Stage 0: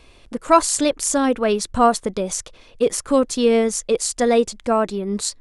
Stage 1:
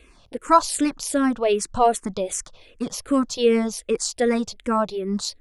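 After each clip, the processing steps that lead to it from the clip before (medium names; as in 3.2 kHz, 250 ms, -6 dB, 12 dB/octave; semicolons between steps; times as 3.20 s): barber-pole phaser -2.6 Hz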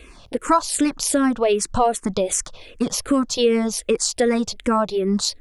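compression 2.5:1, threshold -26 dBFS, peak gain reduction 11.5 dB; trim +8 dB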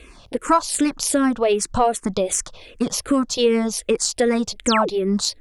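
Chebyshev shaper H 3 -28 dB, 4 -35 dB, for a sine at -3.5 dBFS; painted sound fall, 4.66–4.89 s, 290–9400 Hz -24 dBFS; trim +1 dB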